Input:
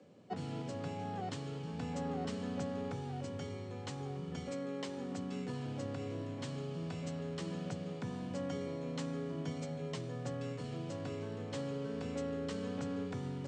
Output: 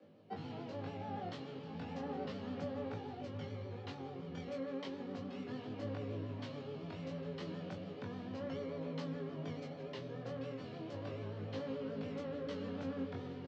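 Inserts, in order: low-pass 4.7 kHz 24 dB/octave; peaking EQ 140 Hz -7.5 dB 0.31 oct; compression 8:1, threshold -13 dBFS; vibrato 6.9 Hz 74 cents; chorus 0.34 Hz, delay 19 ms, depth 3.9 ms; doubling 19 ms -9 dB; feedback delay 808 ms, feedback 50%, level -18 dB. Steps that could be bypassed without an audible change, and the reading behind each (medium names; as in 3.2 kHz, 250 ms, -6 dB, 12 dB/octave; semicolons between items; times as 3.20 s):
compression, threshold -13 dBFS: peak at its input -27.5 dBFS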